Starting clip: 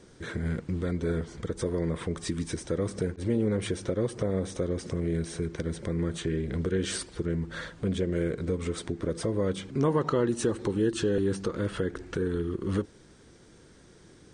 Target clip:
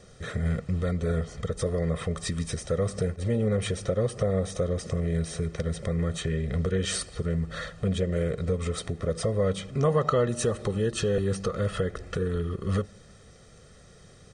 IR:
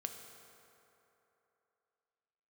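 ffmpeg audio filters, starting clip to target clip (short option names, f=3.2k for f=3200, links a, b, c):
-filter_complex "[0:a]aecho=1:1:1.6:0.78,asplit=2[a][b];[1:a]atrim=start_sample=2205,asetrate=57330,aresample=44100[c];[b][c]afir=irnorm=-1:irlink=0,volume=-13dB[d];[a][d]amix=inputs=2:normalize=0"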